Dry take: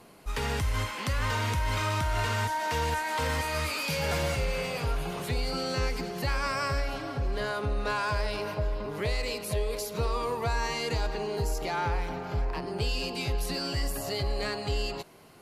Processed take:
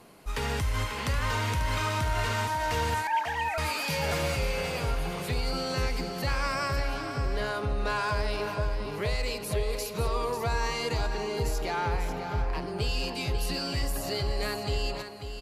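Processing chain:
0:03.07–0:03.58: three sine waves on the formant tracks
on a send: single-tap delay 542 ms −9 dB

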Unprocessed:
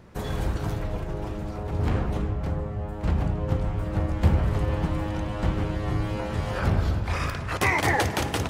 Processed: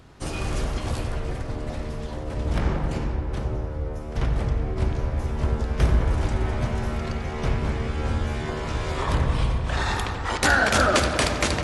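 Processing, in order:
high-shelf EQ 2,200 Hz +9 dB
feedback echo with a low-pass in the loop 66 ms, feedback 82%, low-pass 4,800 Hz, level −9.5 dB
speed change −27%

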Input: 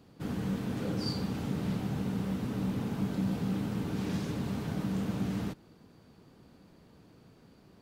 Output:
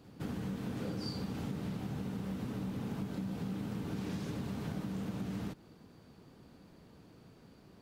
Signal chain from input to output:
downward compressor, threshold −35 dBFS, peak gain reduction 8.5 dB
backwards echo 164 ms −20 dB

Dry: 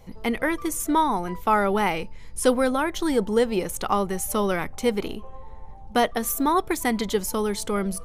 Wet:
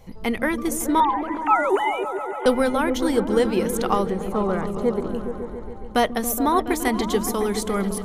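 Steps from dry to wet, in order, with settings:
0:01.00–0:02.46: three sine waves on the formant tracks
0:04.10–0:05.15: moving average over 16 samples
echo whose low-pass opens from repeat to repeat 140 ms, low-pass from 200 Hz, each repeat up 1 octave, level −3 dB
level +1 dB

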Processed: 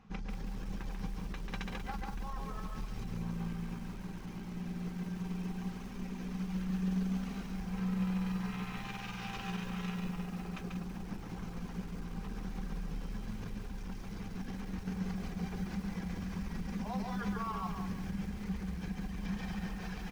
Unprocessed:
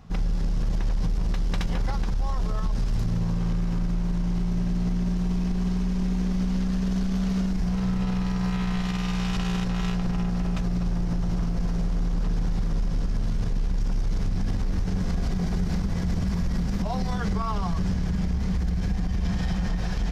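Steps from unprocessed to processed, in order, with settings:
bass and treble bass −10 dB, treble −11 dB
tuned comb filter 790 Hz, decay 0.26 s, mix 70%
reverb reduction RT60 1.2 s
thirty-one-band graphic EQ 200 Hz +10 dB, 630 Hz −9 dB, 2,500 Hz +4 dB, 6,300 Hz +5 dB
on a send: single-tap delay 140 ms −4 dB
on the sum: feedback echo at a low word length 188 ms, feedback 35%, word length 9 bits, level −8 dB
level +3 dB

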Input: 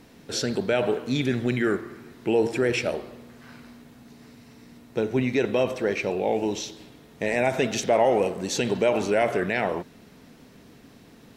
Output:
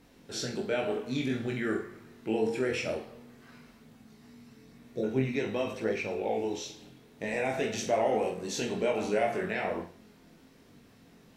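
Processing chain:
flutter between parallel walls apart 7.8 metres, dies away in 0.38 s
healed spectral selection 0:04.70–0:05.01, 750–3,400 Hz before
multi-voice chorus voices 2, 0.51 Hz, delay 21 ms, depth 2.9 ms
level −4.5 dB

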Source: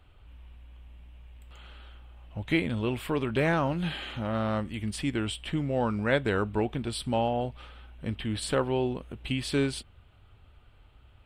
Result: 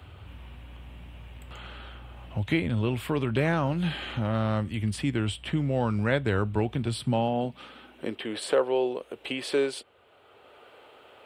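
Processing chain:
high-pass filter sweep 87 Hz → 460 Hz, 0:06.75–0:08.33
multiband upward and downward compressor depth 40%

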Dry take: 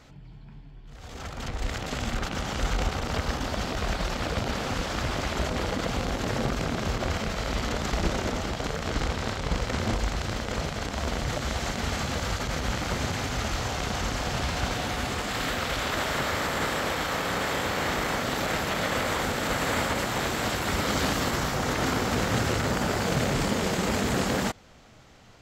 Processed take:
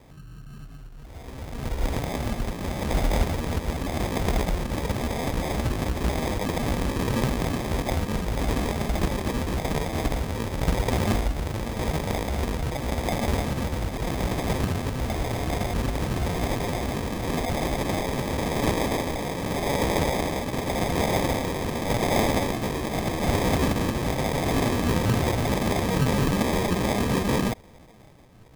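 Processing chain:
rotating-speaker cabinet horn 1 Hz
decimation without filtering 31×
tempo change 0.89×
level +5 dB

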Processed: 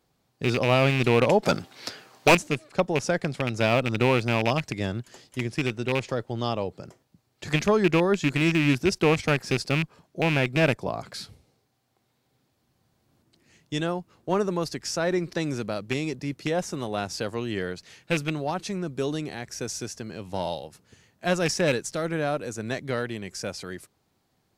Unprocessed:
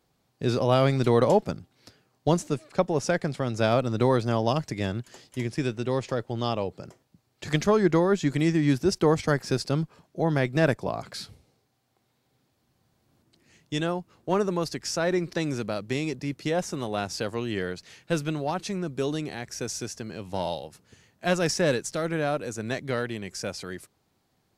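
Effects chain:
loose part that buzzes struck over −25 dBFS, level −16 dBFS
0:01.43–0:02.35: mid-hump overdrive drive 26 dB, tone 6,800 Hz, clips at −8 dBFS

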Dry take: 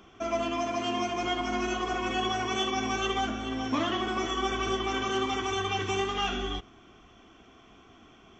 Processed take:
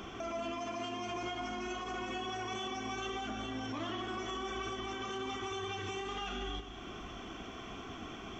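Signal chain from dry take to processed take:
downward compressor 3 to 1, threshold −45 dBFS, peak gain reduction 15.5 dB
brickwall limiter −40.5 dBFS, peak gain reduction 9 dB
echo with a time of its own for lows and highs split 1,700 Hz, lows 119 ms, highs 197 ms, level −10 dB
level +9 dB

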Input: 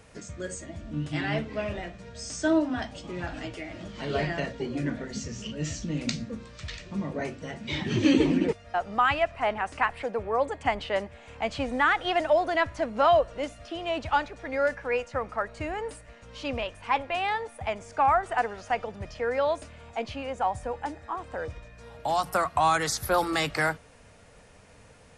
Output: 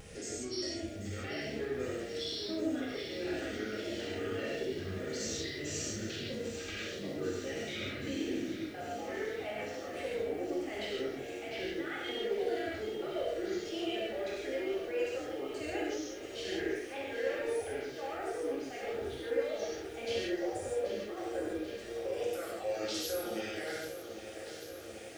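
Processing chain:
pitch shifter gated in a rhythm −7 semitones, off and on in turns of 310 ms
high-pass filter 140 Hz 12 dB per octave
reversed playback
downward compressor, threshold −34 dBFS, peak gain reduction 16 dB
reversed playback
brickwall limiter −31.5 dBFS, peak gain reduction 8.5 dB
upward compression, threshold −50 dBFS
phaser with its sweep stopped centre 410 Hz, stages 4
harmonic generator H 4 −30 dB, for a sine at −29.5 dBFS
pitch vibrato 0.36 Hz 13 cents
on a send: flutter between parallel walls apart 11.4 metres, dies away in 0.34 s
on the sum: reverb whose tail is shaped and stops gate 190 ms flat, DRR −6 dB
feedback echo at a low word length 788 ms, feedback 80%, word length 9 bits, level −11 dB
level −1 dB

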